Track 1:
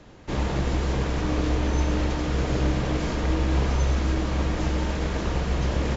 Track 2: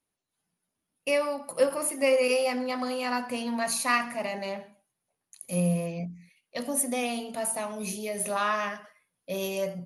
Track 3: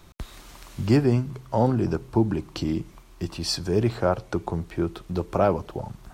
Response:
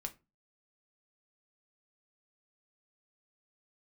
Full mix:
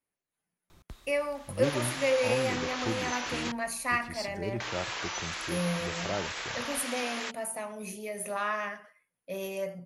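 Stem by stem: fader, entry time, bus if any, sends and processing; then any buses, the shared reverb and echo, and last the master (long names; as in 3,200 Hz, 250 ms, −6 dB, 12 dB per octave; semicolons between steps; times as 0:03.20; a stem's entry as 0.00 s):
+2.0 dB, 1.35 s, muted 0:03.52–0:04.60, no send, high-pass filter 1,400 Hz 12 dB per octave; tape wow and flutter 71 cents
−6.5 dB, 0.00 s, no send, octave-band graphic EQ 500/2,000/4,000 Hz +3/+6/−5 dB
−3.0 dB, 0.70 s, no send, automatic ducking −10 dB, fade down 0.50 s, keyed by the second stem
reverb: not used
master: no processing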